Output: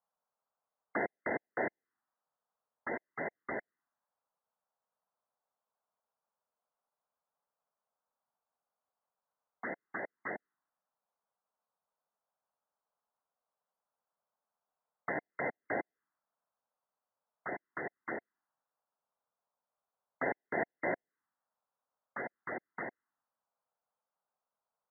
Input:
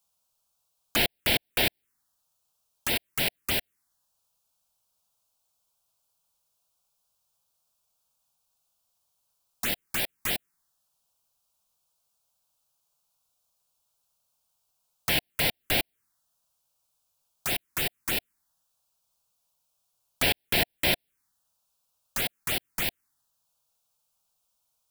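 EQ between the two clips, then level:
high-pass filter 300 Hz 12 dB per octave
linear-phase brick-wall low-pass 2,100 Hz
high-frequency loss of the air 310 metres
−1.5 dB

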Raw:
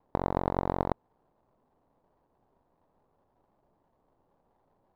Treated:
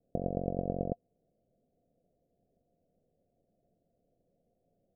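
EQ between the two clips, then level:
Chebyshev low-pass with heavy ripple 720 Hz, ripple 6 dB
0.0 dB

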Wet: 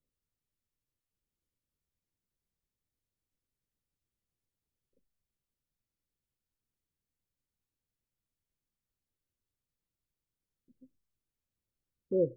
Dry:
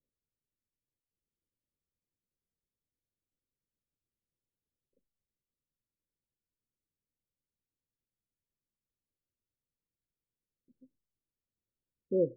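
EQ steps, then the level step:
low-shelf EQ 140 Hz +7 dB
dynamic equaliser 230 Hz, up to −7 dB, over −47 dBFS, Q 2.7
0.0 dB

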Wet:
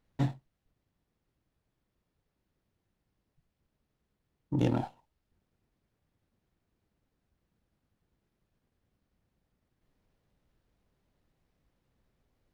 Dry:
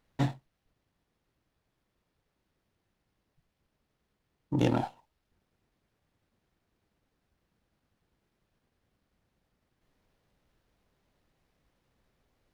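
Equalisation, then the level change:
low-shelf EQ 390 Hz +6 dB
−5.5 dB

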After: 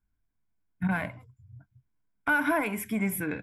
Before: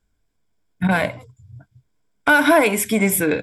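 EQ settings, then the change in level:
octave-band graphic EQ 500/4,000/8,000 Hz −11/−12/−11 dB
−7.5 dB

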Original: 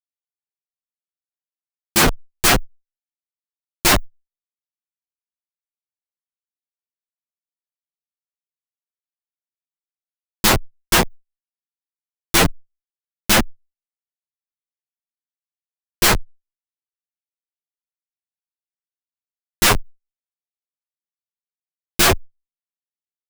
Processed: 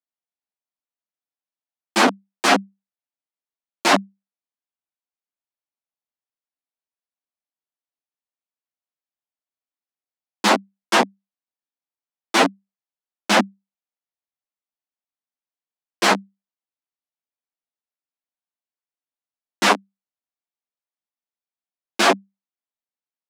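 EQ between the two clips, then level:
Chebyshev high-pass with heavy ripple 190 Hz, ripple 6 dB
high-frequency loss of the air 74 metres
+4.5 dB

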